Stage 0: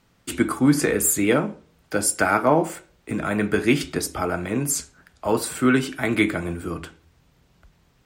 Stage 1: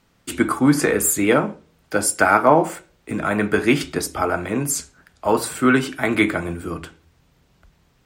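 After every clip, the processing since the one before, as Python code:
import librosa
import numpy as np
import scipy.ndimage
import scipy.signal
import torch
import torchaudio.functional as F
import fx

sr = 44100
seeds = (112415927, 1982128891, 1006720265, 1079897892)

y = fx.hum_notches(x, sr, base_hz=60, count=3)
y = fx.dynamic_eq(y, sr, hz=1000.0, q=0.73, threshold_db=-32.0, ratio=4.0, max_db=5)
y = y * librosa.db_to_amplitude(1.0)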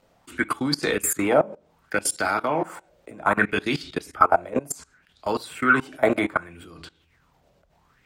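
y = fx.level_steps(x, sr, step_db=21)
y = fx.bell_lfo(y, sr, hz=0.66, low_hz=560.0, high_hz=4400.0, db=16)
y = y * librosa.db_to_amplitude(-2.5)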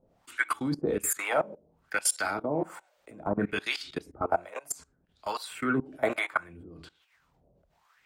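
y = fx.harmonic_tremolo(x, sr, hz=1.2, depth_pct=100, crossover_hz=690.0)
y = y * librosa.db_to_amplitude(-1.0)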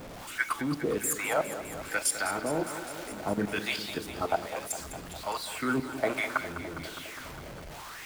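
y = x + 0.5 * 10.0 ** (-35.5 / 20.0) * np.sign(x)
y = fx.echo_crushed(y, sr, ms=204, feedback_pct=80, bits=8, wet_db=-12)
y = y * librosa.db_to_amplitude(-2.5)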